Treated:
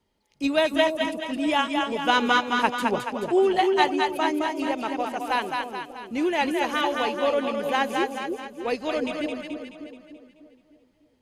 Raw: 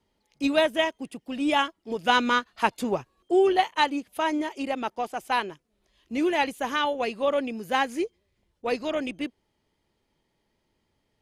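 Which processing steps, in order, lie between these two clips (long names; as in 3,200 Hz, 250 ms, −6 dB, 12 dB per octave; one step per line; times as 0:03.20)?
echo with a time of its own for lows and highs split 570 Hz, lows 300 ms, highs 215 ms, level −3.5 dB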